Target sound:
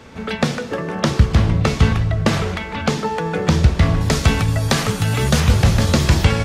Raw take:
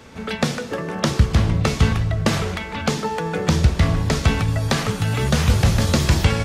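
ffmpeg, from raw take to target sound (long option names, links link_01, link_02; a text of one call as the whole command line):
ffmpeg -i in.wav -af "asetnsamples=nb_out_samples=441:pad=0,asendcmd='4.01 highshelf g 4.5;5.4 highshelf g -3',highshelf=frequency=6100:gain=-6.5,volume=2.5dB" out.wav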